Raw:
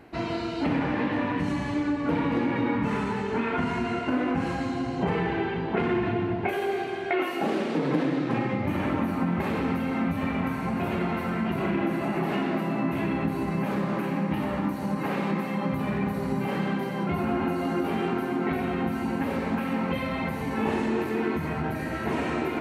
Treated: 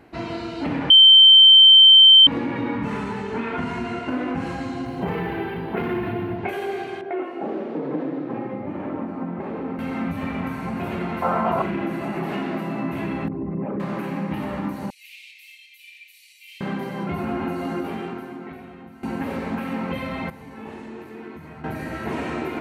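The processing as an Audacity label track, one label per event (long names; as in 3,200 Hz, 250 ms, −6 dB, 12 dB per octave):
0.900000	2.270000	beep over 3,110 Hz −6.5 dBFS
4.850000	6.380000	linearly interpolated sample-rate reduction rate divided by 3×
7.010000	9.790000	resonant band-pass 450 Hz, Q 0.71
11.220000	11.620000	flat-topped bell 810 Hz +14 dB
13.280000	13.800000	spectral envelope exaggerated exponent 2
14.900000	16.610000	Butterworth high-pass 2,300 Hz 72 dB per octave
17.730000	19.030000	fade out quadratic, to −16 dB
20.300000	21.640000	clip gain −11 dB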